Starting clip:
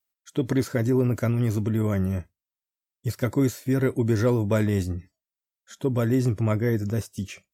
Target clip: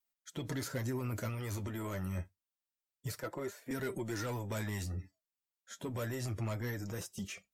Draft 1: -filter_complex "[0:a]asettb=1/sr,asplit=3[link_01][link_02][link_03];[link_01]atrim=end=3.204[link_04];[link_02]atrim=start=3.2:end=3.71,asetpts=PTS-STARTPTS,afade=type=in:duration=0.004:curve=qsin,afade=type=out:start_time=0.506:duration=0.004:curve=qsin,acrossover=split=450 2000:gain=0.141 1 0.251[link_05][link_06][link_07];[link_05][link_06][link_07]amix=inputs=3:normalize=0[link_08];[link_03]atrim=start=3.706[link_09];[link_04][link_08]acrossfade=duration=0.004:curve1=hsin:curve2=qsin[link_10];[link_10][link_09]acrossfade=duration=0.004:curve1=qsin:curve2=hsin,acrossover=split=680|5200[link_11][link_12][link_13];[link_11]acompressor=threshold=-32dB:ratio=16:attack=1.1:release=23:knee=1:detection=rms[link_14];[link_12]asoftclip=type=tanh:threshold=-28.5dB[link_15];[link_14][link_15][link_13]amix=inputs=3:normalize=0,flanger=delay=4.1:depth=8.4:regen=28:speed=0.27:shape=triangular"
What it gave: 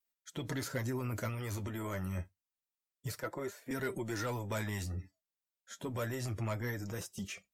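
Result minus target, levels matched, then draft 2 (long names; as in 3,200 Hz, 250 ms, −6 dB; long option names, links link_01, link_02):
soft clipping: distortion −6 dB
-filter_complex "[0:a]asettb=1/sr,asplit=3[link_01][link_02][link_03];[link_01]atrim=end=3.204[link_04];[link_02]atrim=start=3.2:end=3.71,asetpts=PTS-STARTPTS,afade=type=in:duration=0.004:curve=qsin,afade=type=out:start_time=0.506:duration=0.004:curve=qsin,acrossover=split=450 2000:gain=0.141 1 0.251[link_05][link_06][link_07];[link_05][link_06][link_07]amix=inputs=3:normalize=0[link_08];[link_03]atrim=start=3.706[link_09];[link_04][link_08]acrossfade=duration=0.004:curve1=hsin:curve2=qsin[link_10];[link_10][link_09]acrossfade=duration=0.004:curve1=qsin:curve2=hsin,acrossover=split=680|5200[link_11][link_12][link_13];[link_11]acompressor=threshold=-32dB:ratio=16:attack=1.1:release=23:knee=1:detection=rms[link_14];[link_12]asoftclip=type=tanh:threshold=-35.5dB[link_15];[link_14][link_15][link_13]amix=inputs=3:normalize=0,flanger=delay=4.1:depth=8.4:regen=28:speed=0.27:shape=triangular"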